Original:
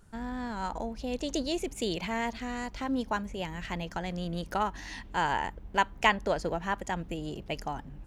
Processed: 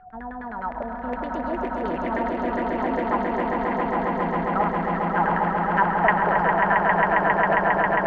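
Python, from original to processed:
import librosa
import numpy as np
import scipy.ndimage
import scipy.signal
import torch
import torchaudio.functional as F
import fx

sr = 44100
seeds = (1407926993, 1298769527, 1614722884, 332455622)

y = x + 10.0 ** (-48.0 / 20.0) * np.sin(2.0 * np.pi * 740.0 * np.arange(len(x)) / sr)
y = fx.filter_lfo_lowpass(y, sr, shape='saw_down', hz=9.7, low_hz=520.0, high_hz=2000.0, q=4.6)
y = fx.echo_swell(y, sr, ms=135, loudest=8, wet_db=-4.5)
y = y * 10.0 ** (-2.5 / 20.0)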